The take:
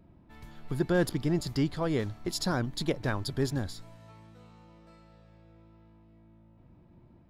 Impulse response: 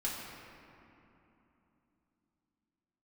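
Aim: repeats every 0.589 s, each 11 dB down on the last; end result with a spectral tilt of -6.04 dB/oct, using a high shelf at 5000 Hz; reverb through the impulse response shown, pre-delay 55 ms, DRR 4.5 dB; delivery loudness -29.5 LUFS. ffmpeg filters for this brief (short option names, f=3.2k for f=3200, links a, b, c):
-filter_complex "[0:a]highshelf=f=5k:g=-6,aecho=1:1:589|1178|1767:0.282|0.0789|0.0221,asplit=2[a][b];[1:a]atrim=start_sample=2205,adelay=55[c];[b][c]afir=irnorm=-1:irlink=0,volume=-8.5dB[d];[a][d]amix=inputs=2:normalize=0,volume=0.5dB"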